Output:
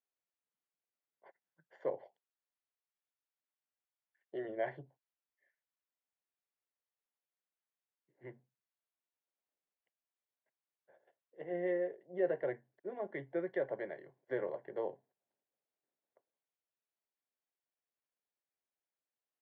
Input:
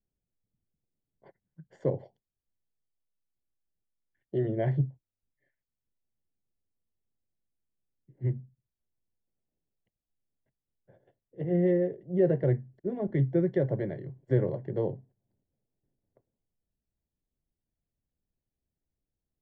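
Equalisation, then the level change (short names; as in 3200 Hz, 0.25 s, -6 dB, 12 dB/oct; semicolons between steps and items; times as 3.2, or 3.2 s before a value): BPF 760–2500 Hz; +1.5 dB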